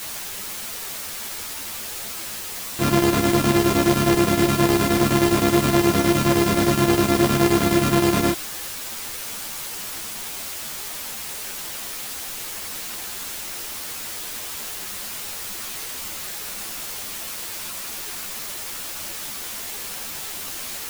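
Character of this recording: a buzz of ramps at a fixed pitch in blocks of 128 samples; chopped level 9.6 Hz, depth 60%, duty 70%; a quantiser's noise floor 6-bit, dither triangular; a shimmering, thickened sound

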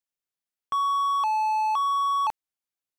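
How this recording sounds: noise floor -92 dBFS; spectral tilt -0.5 dB/oct

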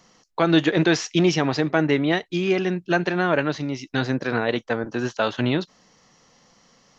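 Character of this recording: noise floor -59 dBFS; spectral tilt -4.5 dB/oct

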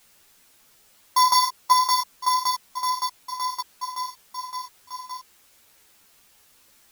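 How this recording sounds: a buzz of ramps at a fixed pitch in blocks of 8 samples; tremolo saw down 5.3 Hz, depth 90%; a quantiser's noise floor 10-bit, dither triangular; a shimmering, thickened sound

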